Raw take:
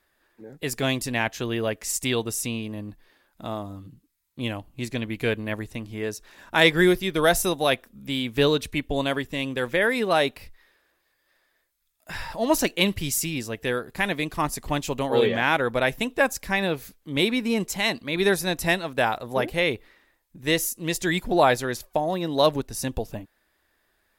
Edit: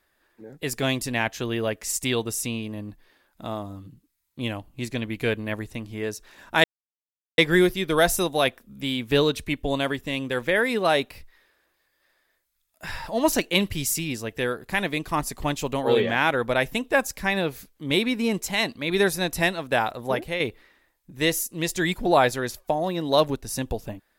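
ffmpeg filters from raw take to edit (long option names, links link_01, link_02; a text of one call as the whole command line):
ffmpeg -i in.wav -filter_complex "[0:a]asplit=3[link_01][link_02][link_03];[link_01]atrim=end=6.64,asetpts=PTS-STARTPTS,afade=type=out:start_time=6.636:duration=0.004:curve=hsin,apad=pad_dur=0.74[link_04];[link_02]atrim=start=6.64:end=19.66,asetpts=PTS-STARTPTS,afade=type=in:duration=0.004:curve=hsin,afade=type=out:start_time=12.7:duration=0.32:silence=0.446684[link_05];[link_03]atrim=start=19.66,asetpts=PTS-STARTPTS,afade=type=in:duration=0.004:curve=hsin:silence=0.446684[link_06];[link_04][link_05][link_06]concat=n=3:v=0:a=1" out.wav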